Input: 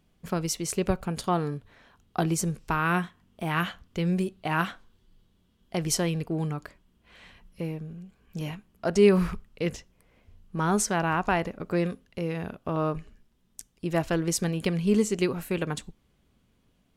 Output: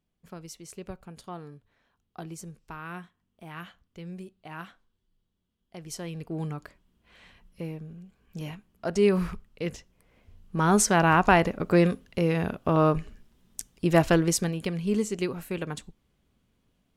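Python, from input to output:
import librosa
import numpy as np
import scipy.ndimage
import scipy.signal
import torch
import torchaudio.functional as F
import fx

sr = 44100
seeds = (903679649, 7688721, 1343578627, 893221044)

y = fx.gain(x, sr, db=fx.line((5.84, -14.0), (6.4, -3.0), (9.74, -3.0), (11.11, 6.0), (14.11, 6.0), (14.63, -3.5)))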